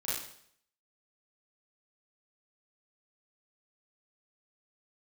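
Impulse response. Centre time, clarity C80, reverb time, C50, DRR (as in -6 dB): 64 ms, 5.0 dB, 0.65 s, -0.5 dB, -10.5 dB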